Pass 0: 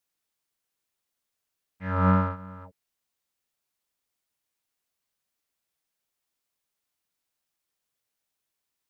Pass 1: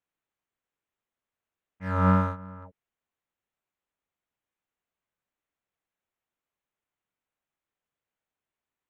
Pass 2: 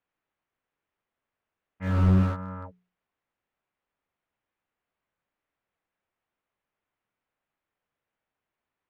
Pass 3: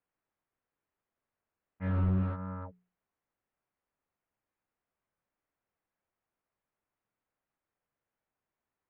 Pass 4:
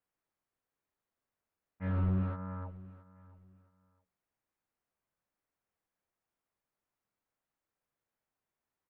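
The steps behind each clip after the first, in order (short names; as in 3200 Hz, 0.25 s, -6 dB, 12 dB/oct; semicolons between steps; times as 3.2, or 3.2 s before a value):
Wiener smoothing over 9 samples
notches 60/120/180/240/300/360/420 Hz; low-pass opened by the level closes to 2800 Hz; slew limiter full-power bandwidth 13 Hz; gain +5.5 dB
compressor 2:1, threshold -28 dBFS, peak gain reduction 7 dB; air absorption 410 m; gain -1.5 dB
feedback echo 0.671 s, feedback 25%, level -19 dB; gain -2 dB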